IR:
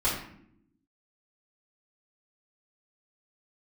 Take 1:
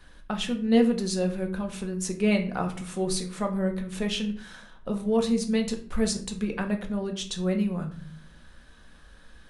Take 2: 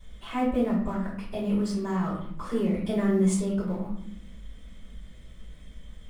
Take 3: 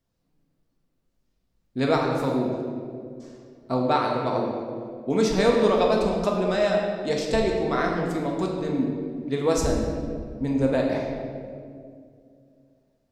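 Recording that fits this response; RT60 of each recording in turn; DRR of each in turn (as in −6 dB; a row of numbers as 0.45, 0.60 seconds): 2; 0.50, 0.70, 2.3 seconds; 3.0, −9.5, −1.0 decibels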